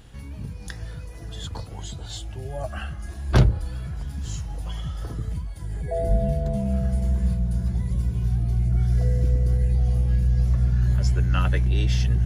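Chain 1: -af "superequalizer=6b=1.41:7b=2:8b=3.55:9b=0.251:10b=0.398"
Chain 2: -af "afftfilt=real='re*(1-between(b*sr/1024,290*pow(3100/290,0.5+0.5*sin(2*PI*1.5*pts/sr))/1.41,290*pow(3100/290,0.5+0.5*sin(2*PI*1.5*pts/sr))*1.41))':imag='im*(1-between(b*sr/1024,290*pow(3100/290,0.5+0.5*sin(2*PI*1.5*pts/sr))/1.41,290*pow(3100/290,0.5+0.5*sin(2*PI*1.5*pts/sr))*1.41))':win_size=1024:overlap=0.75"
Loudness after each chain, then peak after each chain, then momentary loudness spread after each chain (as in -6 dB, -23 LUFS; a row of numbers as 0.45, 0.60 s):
-23.0, -24.5 LUFS; -3.5, -5.5 dBFS; 16, 14 LU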